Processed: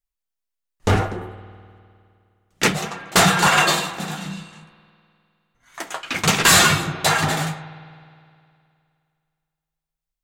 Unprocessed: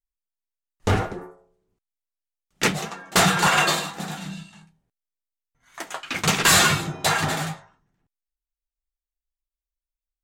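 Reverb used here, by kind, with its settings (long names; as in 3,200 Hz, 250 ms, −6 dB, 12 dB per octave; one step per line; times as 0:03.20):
spring reverb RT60 2.4 s, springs 51 ms, chirp 40 ms, DRR 14.5 dB
level +3 dB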